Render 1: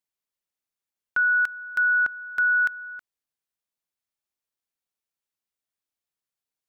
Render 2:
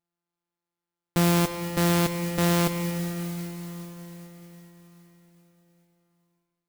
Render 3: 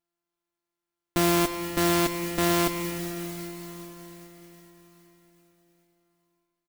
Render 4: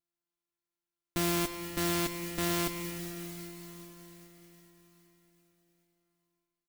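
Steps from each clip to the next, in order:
sample sorter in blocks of 256 samples; digital reverb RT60 4.7 s, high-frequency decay 0.9×, pre-delay 10 ms, DRR 8 dB; modulation noise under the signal 12 dB
comb 3 ms, depth 57%
bell 660 Hz -5.5 dB 2.4 oct; gain -5 dB

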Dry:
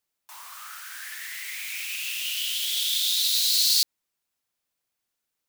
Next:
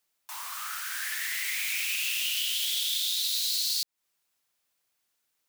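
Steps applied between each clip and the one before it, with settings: low shelf 480 Hz -5.5 dB; compressor 8:1, threshold -31 dBFS, peak gain reduction 13.5 dB; gain +5 dB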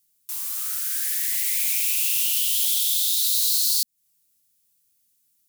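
EQ curve 230 Hz 0 dB, 350 Hz -17 dB, 500 Hz -16 dB, 870 Hz -23 dB, 11000 Hz +3 dB; gain +9 dB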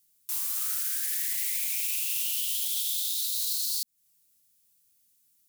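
limiter -20 dBFS, peak gain reduction 10.5 dB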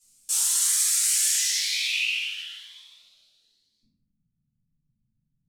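low-pass sweep 8100 Hz -> 160 Hz, 1.25–4.16; shoebox room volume 120 m³, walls mixed, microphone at 3 m; cascading phaser rising 1 Hz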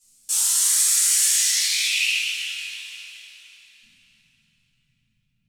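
plate-style reverb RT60 4.3 s, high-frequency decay 0.75×, DRR 2 dB; gain +2 dB

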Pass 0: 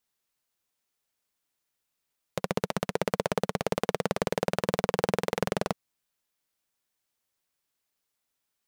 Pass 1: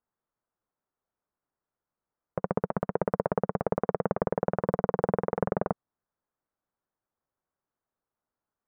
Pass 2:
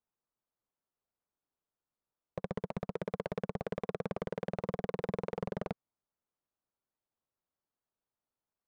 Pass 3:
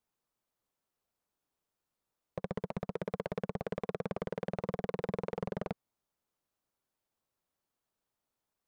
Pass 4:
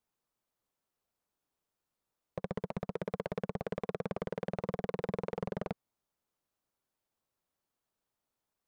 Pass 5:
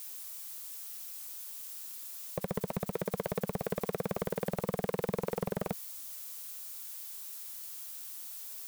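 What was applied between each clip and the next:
LPF 1400 Hz 24 dB/oct; gain +1 dB
median filter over 15 samples; overloaded stage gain 21.5 dB; gain -5 dB
limiter -31.5 dBFS, peak gain reduction 5 dB; gain +5 dB
nothing audible
switching spikes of -39.5 dBFS; gain +2.5 dB

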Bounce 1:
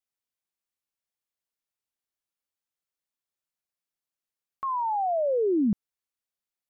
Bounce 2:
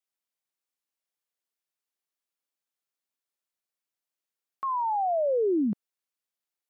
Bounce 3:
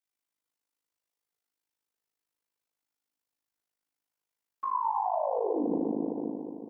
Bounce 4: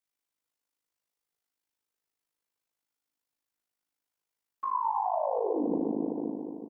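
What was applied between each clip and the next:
HPF 230 Hz
FDN reverb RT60 2.6 s, high-frequency decay 0.45×, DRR -3.5 dB; AM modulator 52 Hz, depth 70%; limiter -21 dBFS, peak gain reduction 10.5 dB
echo 0.424 s -20.5 dB

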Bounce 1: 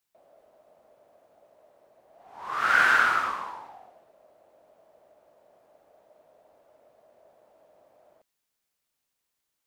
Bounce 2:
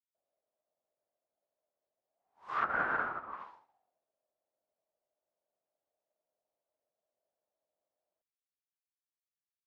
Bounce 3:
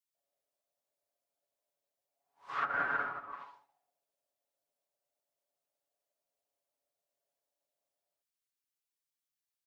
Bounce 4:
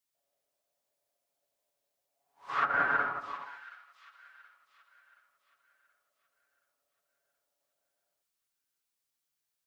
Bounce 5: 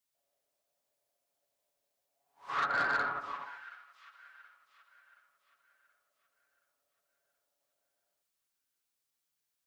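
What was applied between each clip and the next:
treble ducked by the level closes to 840 Hz, closed at -22.5 dBFS; upward expander 2.5:1, over -48 dBFS
high shelf 2100 Hz +8 dB; comb 7.1 ms; gain -5 dB
thin delay 0.725 s, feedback 42%, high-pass 3200 Hz, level -7 dB; gain +5 dB
soft clip -24.5 dBFS, distortion -14 dB; on a send at -23 dB: reverb RT60 0.90 s, pre-delay 75 ms

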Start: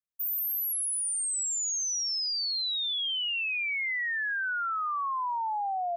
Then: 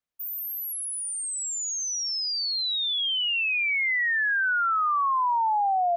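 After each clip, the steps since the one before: high shelf 4700 Hz -10.5 dB; gain +7.5 dB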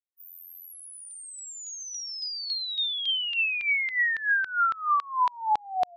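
loudest bins only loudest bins 1; LFO high-pass saw down 3.6 Hz 720–4000 Hz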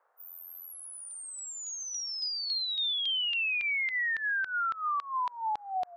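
limiter -26.5 dBFS, peak gain reduction 10 dB; band noise 480–1500 Hz -72 dBFS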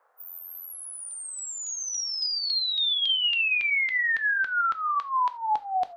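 non-linear reverb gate 0.11 s falling, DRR 9.5 dB; gain +5 dB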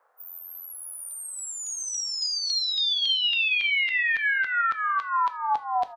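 feedback echo 0.547 s, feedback 16%, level -8 dB

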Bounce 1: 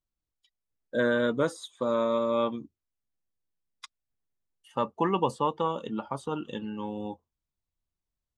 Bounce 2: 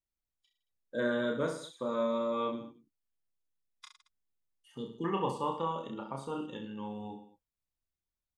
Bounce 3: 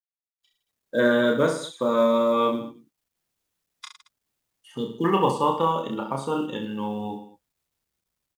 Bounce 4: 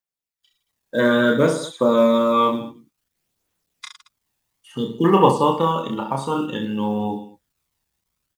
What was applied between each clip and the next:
spectral gain 4.77–5.04, 490–2800 Hz -27 dB; on a send: reverse bouncing-ball echo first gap 30 ms, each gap 1.2×, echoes 5; on the sum: gain -7.5 dB
HPF 91 Hz 6 dB/oct; AGC gain up to 11.5 dB; companded quantiser 8-bit
phaser 0.57 Hz, delay 1.2 ms, feedback 34%; gain +4 dB

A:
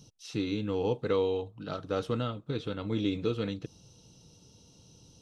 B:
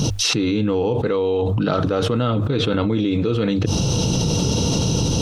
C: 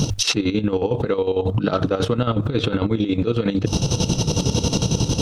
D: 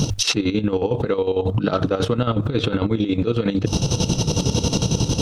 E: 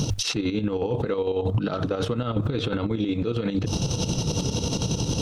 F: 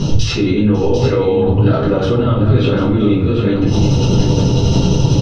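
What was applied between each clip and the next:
high shelf 4400 Hz -9 dB; notches 50/100 Hz; fast leveller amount 100%; gain +6 dB
chopper 11 Hz, depth 65%, duty 50%; gain +1.5 dB
nothing audible
limiter -16 dBFS, peak gain reduction 10.5 dB
air absorption 120 m; echo 0.746 s -8.5 dB; shoebox room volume 49 m³, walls mixed, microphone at 1.7 m; gain +1.5 dB

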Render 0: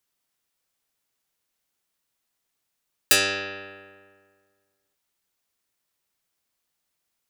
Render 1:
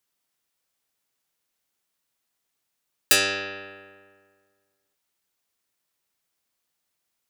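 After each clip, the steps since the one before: low shelf 72 Hz -5 dB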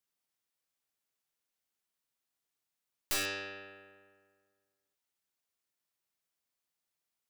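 one diode to ground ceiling -20 dBFS; wrapped overs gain 16.5 dB; gain -9 dB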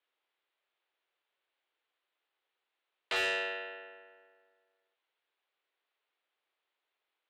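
mistuned SSB +83 Hz 260–3600 Hz; added harmonics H 5 -17 dB, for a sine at -25 dBFS; gain +3.5 dB

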